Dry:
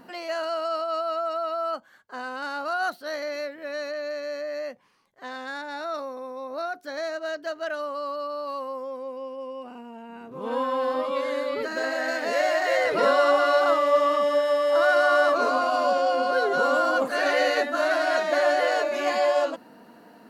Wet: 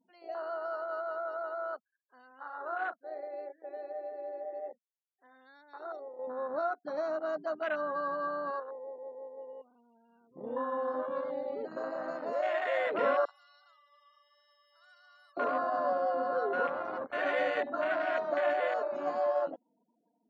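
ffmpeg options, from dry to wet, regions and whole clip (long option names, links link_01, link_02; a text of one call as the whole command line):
ffmpeg -i in.wav -filter_complex "[0:a]asettb=1/sr,asplit=3[link_01][link_02][link_03];[link_01]atrim=end=2.274[link_04];[link_02]atrim=start=2.27:end=5.41,asetpts=PTS-STARTPTS,afade=type=in:duration=0.004:curve=qsin,afade=type=out:start_time=3.136:duration=0.004:curve=qsin,lowpass=2800,asplit=2[link_05][link_06];[link_06]adelay=38,volume=-8.5dB[link_07];[link_05][link_07]amix=inputs=2:normalize=0,atrim=end_sample=138474[link_08];[link_03]atrim=start=5.406[link_09];[link_04][link_08]acrossfade=duration=0.004:curve1=hsin:curve2=qsin[link_10];[link_10][link_09]acrossfade=duration=0.004:curve1=qsin:curve2=hsin,asettb=1/sr,asplit=3[link_11][link_12][link_13];[link_11]atrim=end=6.194[link_14];[link_12]atrim=start=6.19:end=8.6,asetpts=PTS-STARTPTS,afade=type=in:duration=0.004:curve=qsin,afade=type=out:start_time=2.406:duration=0.004:curve=qsin,asubboost=boost=7.5:cutoff=170,acontrast=83,asplit=2[link_15][link_16];[link_16]adelay=13,volume=-12dB[link_17];[link_15][link_17]amix=inputs=2:normalize=0,atrim=end_sample=106281[link_18];[link_13]atrim=start=8.596[link_19];[link_14][link_18]acrossfade=duration=0.004:curve1=hsin:curve2=qsin[link_20];[link_20][link_19]acrossfade=duration=0.004:curve1=qsin:curve2=hsin,asettb=1/sr,asplit=3[link_21][link_22][link_23];[link_21]atrim=end=13.254[link_24];[link_22]atrim=start=13.25:end=15.37,asetpts=PTS-STARTPTS,afade=type=in:duration=0.004:curve=qsin,afade=type=out:start_time=2.116:duration=0.004:curve=qsin,highpass=frequency=720:width=0.5412,highpass=frequency=720:width=1.3066,aderivative[link_25];[link_23]atrim=start=15.366[link_26];[link_24][link_25]acrossfade=duration=0.004:curve1=hsin:curve2=qsin[link_27];[link_27][link_26]acrossfade=duration=0.004:curve1=qsin:curve2=hsin,asettb=1/sr,asplit=3[link_28][link_29][link_30];[link_28]atrim=end=16.674[link_31];[link_29]atrim=start=16.67:end=17.13,asetpts=PTS-STARTPTS,afade=type=in:duration=0.004:curve=qsin,afade=type=out:start_time=0.456:duration=0.004:curve=qsin,highshelf=frequency=9800:gain=-8,aeval=exprs='max(val(0),0)':channel_layout=same[link_32];[link_30]atrim=start=17.126[link_33];[link_31][link_32]acrossfade=duration=0.004:curve1=hsin:curve2=qsin[link_34];[link_34][link_33]acrossfade=duration=0.004:curve1=qsin:curve2=hsin,highpass=65,afftfilt=real='re*gte(hypot(re,im),0.01)':imag='im*gte(hypot(re,im),0.01)':win_size=1024:overlap=0.75,afwtdn=0.0562,volume=-7.5dB" out.wav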